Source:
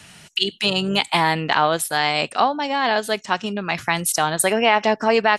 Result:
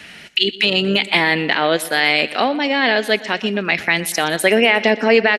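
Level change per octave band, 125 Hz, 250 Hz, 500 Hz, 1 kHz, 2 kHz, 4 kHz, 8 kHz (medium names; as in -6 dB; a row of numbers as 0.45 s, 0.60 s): +0.5 dB, +5.0 dB, +4.0 dB, -2.5 dB, +6.5 dB, +4.5 dB, -3.5 dB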